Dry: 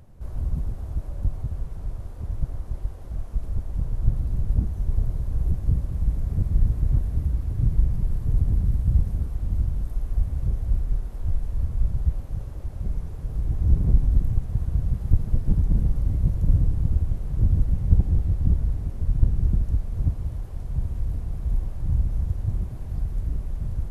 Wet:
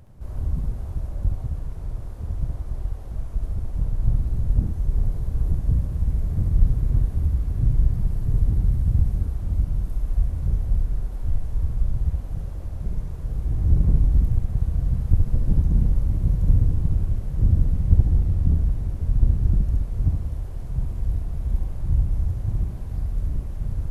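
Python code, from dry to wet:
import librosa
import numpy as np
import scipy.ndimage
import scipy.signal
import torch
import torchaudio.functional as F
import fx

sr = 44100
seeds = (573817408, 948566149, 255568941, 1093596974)

y = fx.room_early_taps(x, sr, ms=(25, 69), db=(-15.0, -4.0))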